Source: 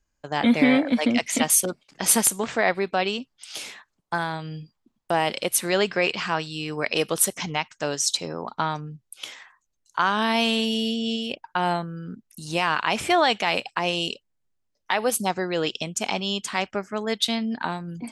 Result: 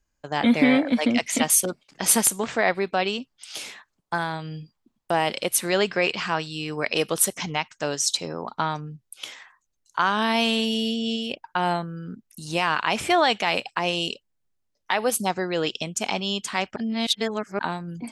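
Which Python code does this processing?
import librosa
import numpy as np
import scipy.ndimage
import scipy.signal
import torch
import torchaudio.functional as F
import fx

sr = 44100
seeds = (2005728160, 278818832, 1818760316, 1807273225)

y = fx.edit(x, sr, fx.reverse_span(start_s=16.76, length_s=0.83), tone=tone)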